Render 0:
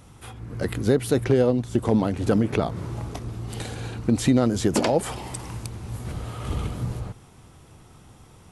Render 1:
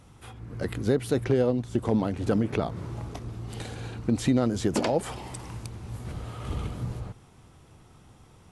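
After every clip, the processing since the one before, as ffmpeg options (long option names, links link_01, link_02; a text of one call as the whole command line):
ffmpeg -i in.wav -af "highshelf=frequency=10000:gain=-7,volume=-4dB" out.wav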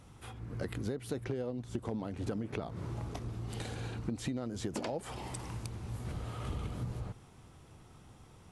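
ffmpeg -i in.wav -af "acompressor=threshold=-31dB:ratio=6,volume=-2.5dB" out.wav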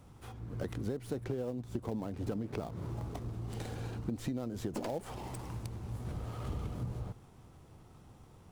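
ffmpeg -i in.wav -filter_complex "[0:a]acrossover=split=660|1200[link_01][link_02][link_03];[link_02]acrusher=bits=2:mode=log:mix=0:aa=0.000001[link_04];[link_03]aeval=exprs='max(val(0),0)':channel_layout=same[link_05];[link_01][link_04][link_05]amix=inputs=3:normalize=0" out.wav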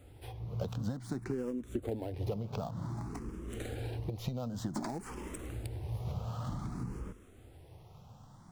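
ffmpeg -i in.wav -filter_complex "[0:a]asplit=2[link_01][link_02];[link_02]afreqshift=0.54[link_03];[link_01][link_03]amix=inputs=2:normalize=1,volume=4dB" out.wav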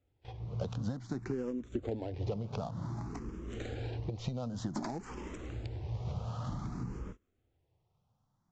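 ffmpeg -i in.wav -af "aresample=16000,aresample=44100,agate=range=-22dB:threshold=-45dB:ratio=16:detection=peak" out.wav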